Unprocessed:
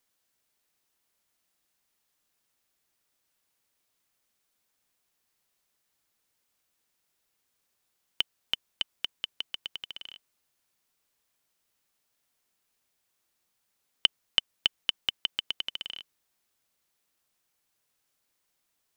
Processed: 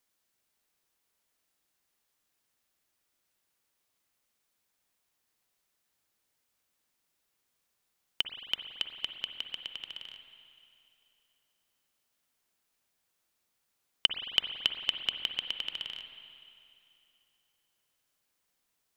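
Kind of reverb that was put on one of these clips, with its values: spring tank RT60 2.7 s, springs 44/56 ms, chirp 55 ms, DRR 6 dB; gain -2 dB

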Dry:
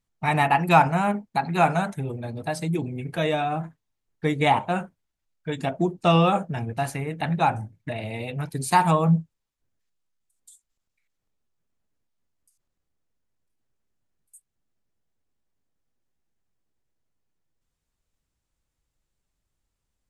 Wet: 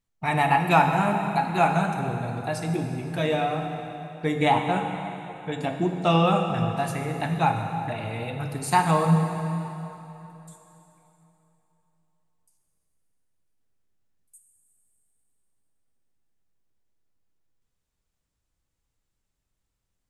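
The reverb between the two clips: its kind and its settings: plate-style reverb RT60 3.3 s, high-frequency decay 0.85×, DRR 3.5 dB; gain -2 dB

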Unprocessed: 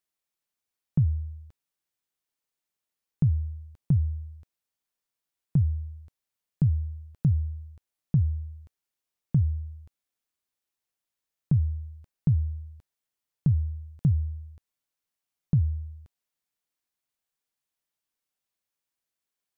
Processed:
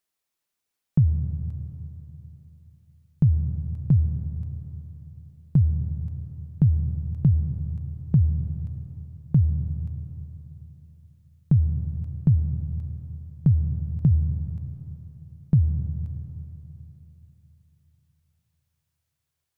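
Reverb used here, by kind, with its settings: digital reverb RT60 3.5 s, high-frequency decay 0.75×, pre-delay 60 ms, DRR 8 dB; gain +4 dB

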